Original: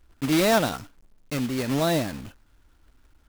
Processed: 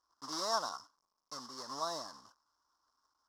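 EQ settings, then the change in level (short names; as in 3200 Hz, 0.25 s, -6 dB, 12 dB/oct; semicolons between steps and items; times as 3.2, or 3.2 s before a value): double band-pass 2400 Hz, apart 2.3 oct; +1.0 dB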